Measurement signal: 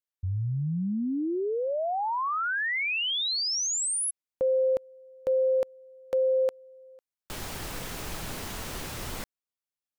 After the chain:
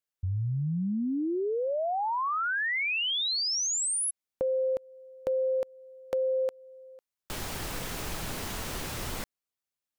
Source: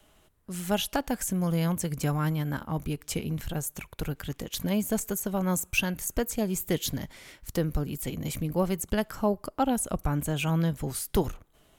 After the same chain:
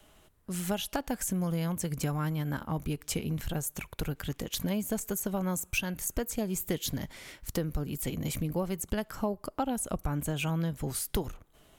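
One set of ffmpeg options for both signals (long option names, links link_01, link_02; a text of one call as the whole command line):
ffmpeg -i in.wav -af "acompressor=threshold=-27dB:ratio=6:attack=9.2:release=695:knee=6:detection=peak,volume=1.5dB" out.wav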